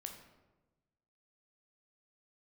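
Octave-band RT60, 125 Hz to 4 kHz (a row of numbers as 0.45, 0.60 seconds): 1.6, 1.4, 1.2, 1.0, 0.85, 0.65 seconds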